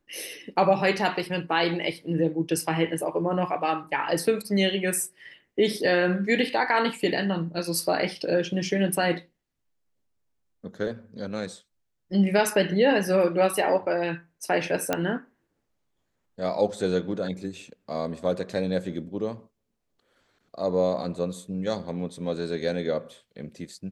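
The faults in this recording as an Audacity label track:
14.930000	14.930000	click −9 dBFS

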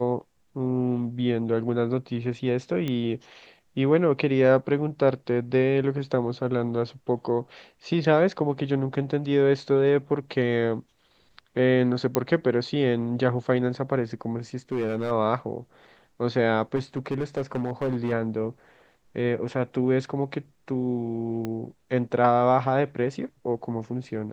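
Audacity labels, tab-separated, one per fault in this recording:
2.880000	2.880000	click −17 dBFS
12.150000	12.150000	click −8 dBFS
14.720000	15.120000	clipping −22 dBFS
16.750000	18.130000	clipping −22 dBFS
21.450000	21.450000	click −18 dBFS

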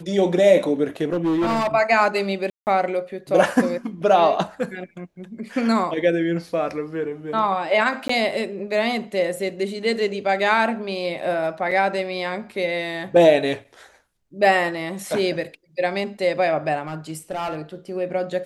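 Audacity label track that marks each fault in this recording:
1.120000	1.680000	clipping −17.5 dBFS
2.500000	2.670000	drop-out 169 ms
8.080000	8.090000	drop-out 14 ms
11.710000	11.720000	drop-out 5.4 ms
16.870000	17.560000	clipping −22.5 dBFS

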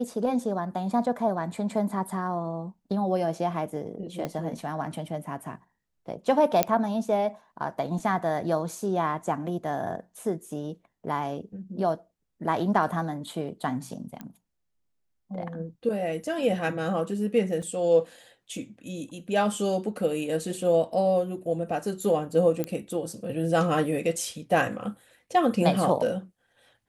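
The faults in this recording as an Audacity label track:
4.250000	4.250000	click −17 dBFS
6.630000	6.630000	click −5 dBFS
14.210000	14.210000	click −24 dBFS
17.620000	17.620000	drop-out 3.6 ms
22.640000	22.640000	click −15 dBFS

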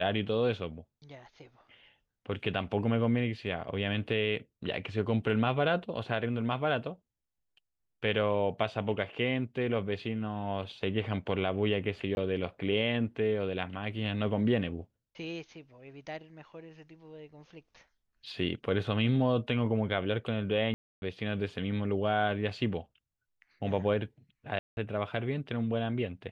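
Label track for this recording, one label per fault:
12.150000	12.170000	drop-out 21 ms
20.740000	21.020000	drop-out 281 ms
24.590000	24.770000	drop-out 181 ms

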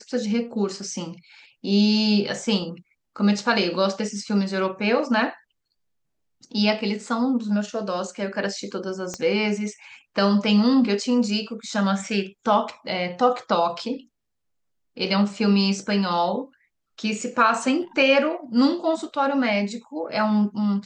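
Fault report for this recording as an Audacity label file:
9.140000	9.140000	click −16 dBFS

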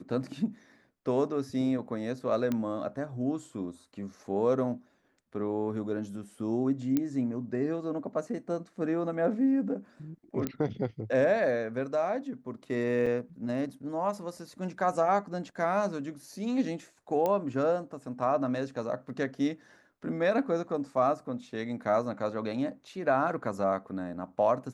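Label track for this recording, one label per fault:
2.520000	2.520000	click −18 dBFS
6.970000	6.970000	click −15 dBFS
10.470000	10.470000	click −17 dBFS
13.060000	13.070000	drop-out 5.1 ms
17.260000	17.260000	click −17 dBFS

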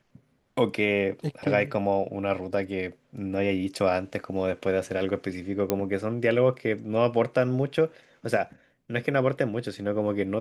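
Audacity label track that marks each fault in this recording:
5.700000	5.700000	click −9 dBFS

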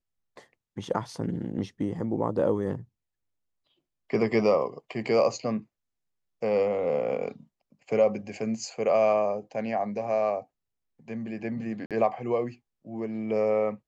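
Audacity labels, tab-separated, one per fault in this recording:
11.860000	11.910000	drop-out 47 ms

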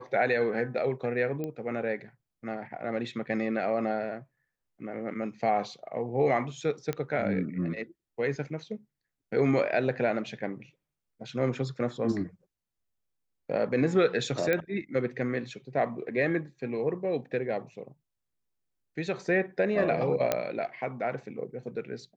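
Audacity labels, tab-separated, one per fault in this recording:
1.440000	1.440000	click −22 dBFS
6.930000	6.930000	click −18 dBFS
14.530000	14.530000	click −14 dBFS
20.320000	20.320000	click −11 dBFS

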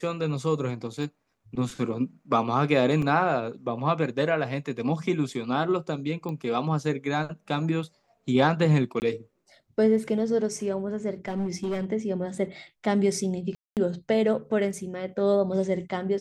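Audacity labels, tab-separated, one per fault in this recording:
1.030000	1.030000	drop-out 2.2 ms
3.020000	3.020000	drop-out 3.8 ms
6.290000	6.290000	click −23 dBFS
9.000000	9.020000	drop-out 19 ms
11.280000	11.850000	clipping −24.5 dBFS
13.550000	13.770000	drop-out 218 ms

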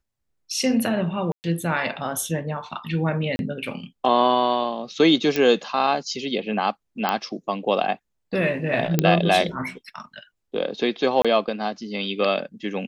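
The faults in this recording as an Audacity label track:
1.320000	1.440000	drop-out 119 ms
3.360000	3.390000	drop-out 31 ms
5.360000	5.360000	click −9 dBFS
7.090000	7.090000	click −9 dBFS
8.990000	8.990000	click −4 dBFS
11.220000	11.250000	drop-out 26 ms

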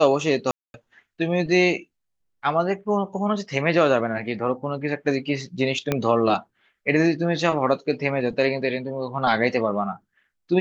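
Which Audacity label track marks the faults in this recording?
0.510000	0.740000	drop-out 231 ms
5.920000	5.920000	click −8 dBFS

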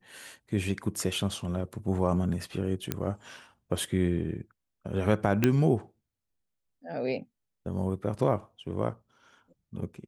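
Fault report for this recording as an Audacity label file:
2.920000	2.920000	click −13 dBFS
5.440000	5.440000	click −9 dBFS

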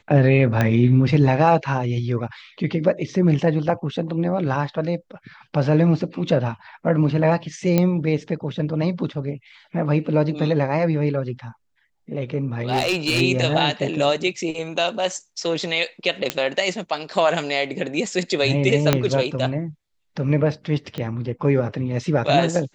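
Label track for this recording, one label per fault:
0.610000	0.610000	click −7 dBFS
7.780000	7.780000	click −6 dBFS
12.610000	13.220000	clipping −15.5 dBFS
16.300000	16.300000	click −5 dBFS
18.930000	18.930000	click −1 dBFS
20.980000	20.980000	click −16 dBFS

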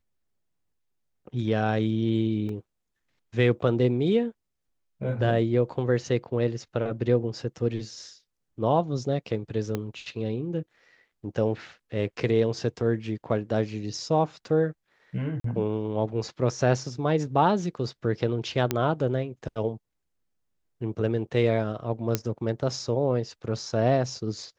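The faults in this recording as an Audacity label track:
2.490000	2.490000	drop-out 2.2 ms
9.750000	9.750000	click −15 dBFS
15.400000	15.440000	drop-out 43 ms
18.710000	18.710000	click −9 dBFS
22.150000	22.150000	click −8 dBFS

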